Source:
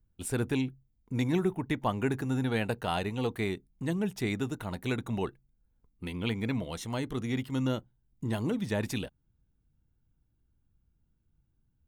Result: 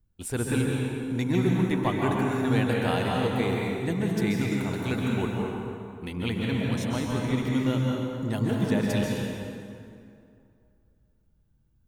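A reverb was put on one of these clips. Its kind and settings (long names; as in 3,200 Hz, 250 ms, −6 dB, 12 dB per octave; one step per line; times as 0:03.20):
dense smooth reverb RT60 2.5 s, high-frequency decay 0.65×, pre-delay 120 ms, DRR −2 dB
level +1 dB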